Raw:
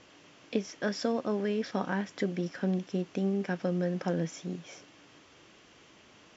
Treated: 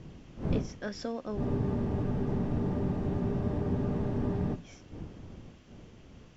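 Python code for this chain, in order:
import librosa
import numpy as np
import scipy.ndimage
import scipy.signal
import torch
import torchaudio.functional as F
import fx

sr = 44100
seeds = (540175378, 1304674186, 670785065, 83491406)

y = fx.dmg_wind(x, sr, seeds[0], corner_hz=220.0, level_db=-31.0)
y = fx.spec_freeze(y, sr, seeds[1], at_s=1.42, hold_s=3.12)
y = y * librosa.db_to_amplitude(-6.0)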